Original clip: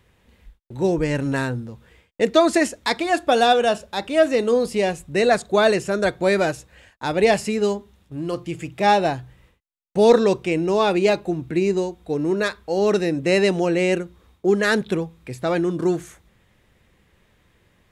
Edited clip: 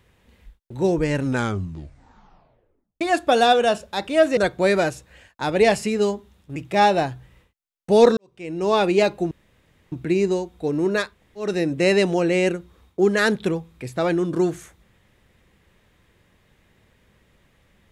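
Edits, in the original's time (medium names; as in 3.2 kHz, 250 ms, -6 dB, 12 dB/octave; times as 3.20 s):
1.21 s: tape stop 1.80 s
4.37–5.99 s: delete
8.18–8.63 s: delete
10.24–10.79 s: fade in quadratic
11.38 s: insert room tone 0.61 s
12.57–12.93 s: room tone, crossfade 0.24 s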